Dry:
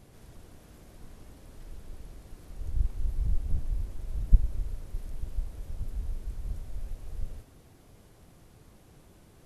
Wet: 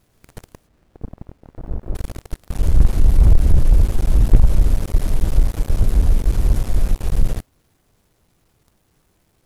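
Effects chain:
0:00.67–0:01.95: Gaussian smoothing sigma 8.1 samples
leveller curve on the samples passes 5
bit reduction 11 bits
level +2 dB

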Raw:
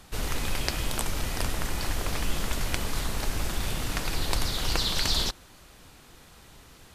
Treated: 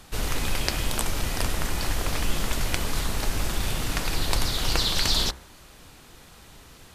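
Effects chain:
hum removal 64.92 Hz, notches 35
level +3 dB

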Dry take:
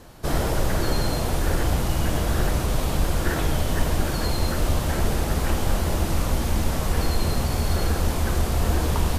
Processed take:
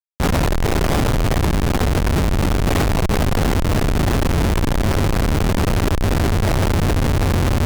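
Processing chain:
speech leveller 0.5 s
comparator with hysteresis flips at −24.5 dBFS
speed change +20%
level +5.5 dB

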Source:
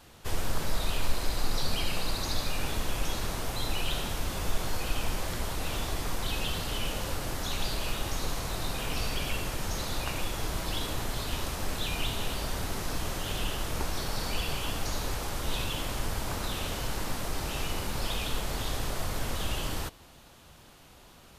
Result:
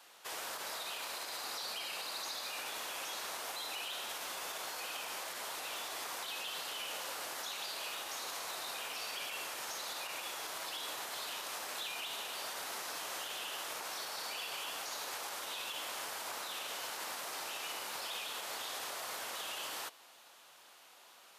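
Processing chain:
high-pass filter 690 Hz 12 dB per octave
brickwall limiter −30 dBFS, peak gain reduction 10.5 dB
level −2 dB

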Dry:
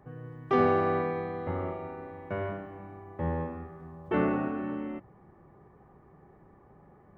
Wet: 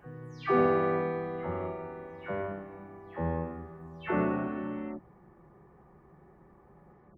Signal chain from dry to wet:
every frequency bin delayed by itself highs early, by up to 257 ms

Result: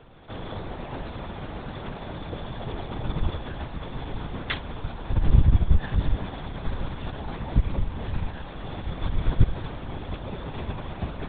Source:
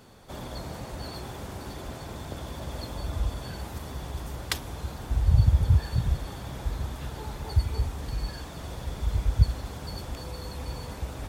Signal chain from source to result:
linear-prediction vocoder at 8 kHz whisper
level +3 dB

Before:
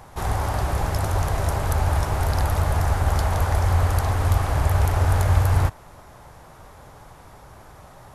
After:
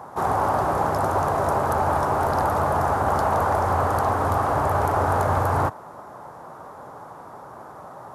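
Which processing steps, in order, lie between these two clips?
high-pass filter 200 Hz 12 dB per octave
high shelf with overshoot 1,700 Hz −11 dB, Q 1.5
in parallel at −8.5 dB: soft clipping −23.5 dBFS, distortion −15 dB
on the sum: level +3.5 dB

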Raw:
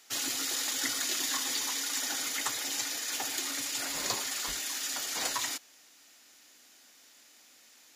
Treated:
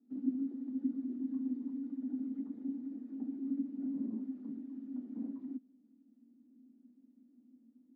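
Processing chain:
brickwall limiter −24 dBFS, peak gain reduction 10 dB
flat-topped band-pass 240 Hz, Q 4.4
level +18 dB

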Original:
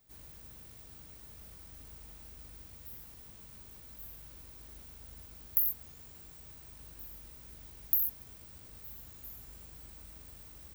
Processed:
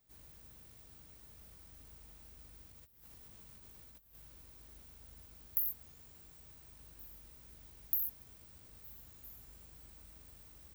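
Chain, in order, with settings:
0:02.71–0:04.15: compressor whose output falls as the input rises −52 dBFS, ratio −0.5
level −5.5 dB

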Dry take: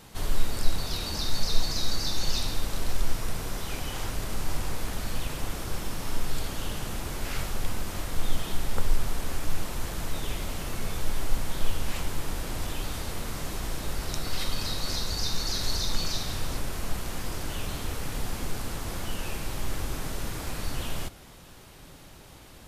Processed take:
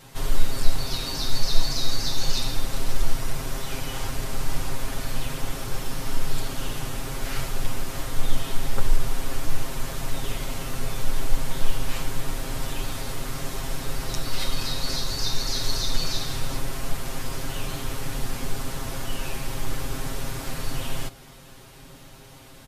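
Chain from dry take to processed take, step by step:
comb filter 7.5 ms, depth 90%

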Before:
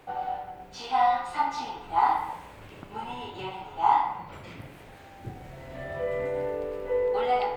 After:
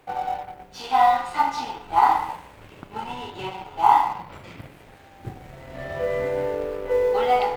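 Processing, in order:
mu-law and A-law mismatch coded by A
level +6 dB

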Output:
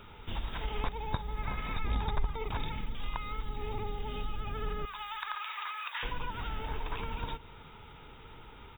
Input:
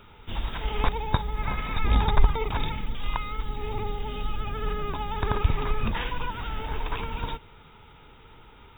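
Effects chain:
0:04.85–0:06.03: high-pass filter 1,100 Hz 24 dB per octave
downward compressor 2 to 1, threshold −36 dBFS, peak gain reduction 14 dB
repeating echo 167 ms, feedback 51%, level −22.5 dB

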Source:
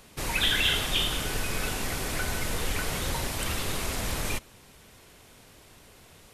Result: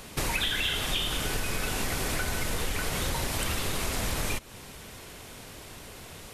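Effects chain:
downward compressor 6 to 1, threshold −35 dBFS, peak gain reduction 13.5 dB
level +8.5 dB

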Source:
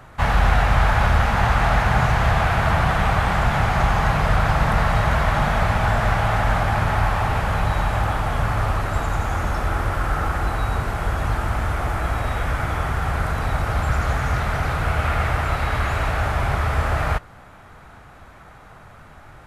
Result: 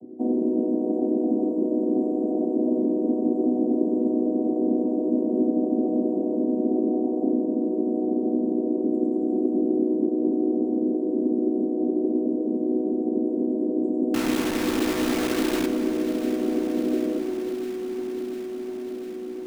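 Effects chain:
channel vocoder with a chord as carrier major triad, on B3
inverse Chebyshev band-stop filter 1,200–4,500 Hz, stop band 70 dB
bass and treble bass −10 dB, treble −8 dB
mains-hum notches 60/120/180/240 Hz
in parallel at 0 dB: downward compressor, threshold −33 dBFS, peak gain reduction 5.5 dB
0:14.14–0:15.66: on the sum: bit-depth reduction 6 bits, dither none
delay that swaps between a low-pass and a high-pass 350 ms, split 1,400 Hz, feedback 86%, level −10.5 dB
on a send at −9.5 dB: convolution reverb RT60 2.1 s, pre-delay 4 ms
on the sum: level +8.5 dB

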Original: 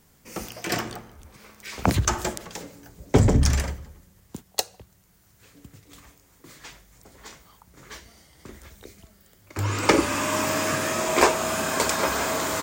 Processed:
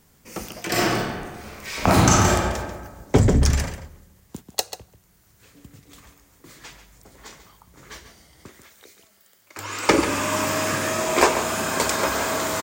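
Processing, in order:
0:00.71–0:02.32: thrown reverb, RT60 1.4 s, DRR −7 dB
0:08.48–0:09.89: high-pass filter 900 Hz 6 dB per octave
slap from a distant wall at 24 metres, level −10 dB
level +1 dB

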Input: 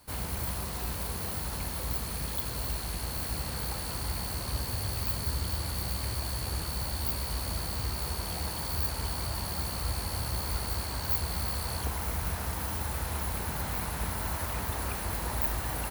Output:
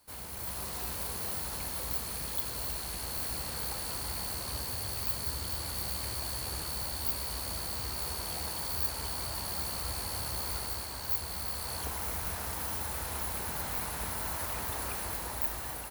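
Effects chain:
bass and treble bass −6 dB, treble +3 dB
automatic gain control gain up to 6 dB
level −8 dB

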